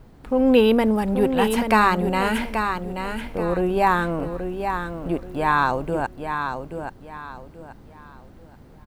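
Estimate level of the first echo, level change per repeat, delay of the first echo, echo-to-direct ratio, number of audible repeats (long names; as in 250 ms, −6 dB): −7.0 dB, −10.5 dB, 831 ms, −6.5 dB, 3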